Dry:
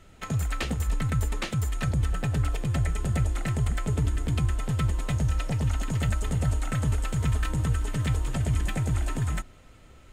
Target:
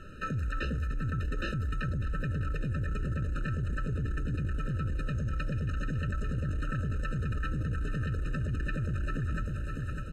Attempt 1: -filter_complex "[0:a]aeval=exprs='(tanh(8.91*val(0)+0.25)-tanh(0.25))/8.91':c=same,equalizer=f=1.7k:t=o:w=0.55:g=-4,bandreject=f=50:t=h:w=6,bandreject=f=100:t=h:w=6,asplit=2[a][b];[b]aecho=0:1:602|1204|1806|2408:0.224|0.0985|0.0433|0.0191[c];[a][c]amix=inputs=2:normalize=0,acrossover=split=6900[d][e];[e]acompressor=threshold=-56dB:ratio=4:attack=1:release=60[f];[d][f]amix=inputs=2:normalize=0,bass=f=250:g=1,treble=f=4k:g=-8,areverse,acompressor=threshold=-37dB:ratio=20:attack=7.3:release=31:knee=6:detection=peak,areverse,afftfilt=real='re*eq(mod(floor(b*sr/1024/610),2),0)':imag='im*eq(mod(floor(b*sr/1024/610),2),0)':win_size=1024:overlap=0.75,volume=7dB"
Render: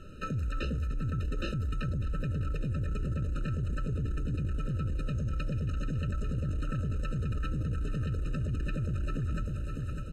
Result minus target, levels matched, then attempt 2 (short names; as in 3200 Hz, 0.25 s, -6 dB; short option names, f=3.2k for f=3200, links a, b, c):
2000 Hz band -6.5 dB
-filter_complex "[0:a]aeval=exprs='(tanh(8.91*val(0)+0.25)-tanh(0.25))/8.91':c=same,equalizer=f=1.7k:t=o:w=0.55:g=6.5,bandreject=f=50:t=h:w=6,bandreject=f=100:t=h:w=6,asplit=2[a][b];[b]aecho=0:1:602|1204|1806|2408:0.224|0.0985|0.0433|0.0191[c];[a][c]amix=inputs=2:normalize=0,acrossover=split=6900[d][e];[e]acompressor=threshold=-56dB:ratio=4:attack=1:release=60[f];[d][f]amix=inputs=2:normalize=0,bass=f=250:g=1,treble=f=4k:g=-8,areverse,acompressor=threshold=-37dB:ratio=20:attack=7.3:release=31:knee=6:detection=peak,areverse,afftfilt=real='re*eq(mod(floor(b*sr/1024/610),2),0)':imag='im*eq(mod(floor(b*sr/1024/610),2),0)':win_size=1024:overlap=0.75,volume=7dB"